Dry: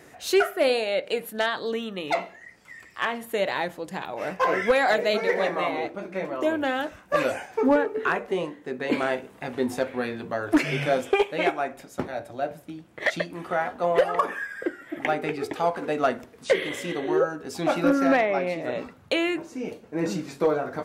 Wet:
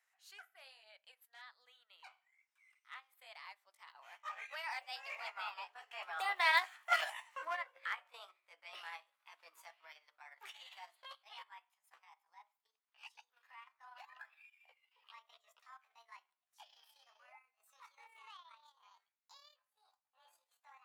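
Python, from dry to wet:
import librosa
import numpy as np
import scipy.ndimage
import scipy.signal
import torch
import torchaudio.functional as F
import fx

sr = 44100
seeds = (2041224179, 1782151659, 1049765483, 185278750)

y = fx.pitch_glide(x, sr, semitones=10.5, runs='starting unshifted')
y = fx.doppler_pass(y, sr, speed_mps=12, closest_m=2.4, pass_at_s=6.62)
y = scipy.signal.sosfilt(scipy.signal.butter(4, 960.0, 'highpass', fs=sr, output='sos'), y)
y = fx.transient(y, sr, attack_db=-3, sustain_db=-8)
y = y * 10.0 ** (4.0 / 20.0)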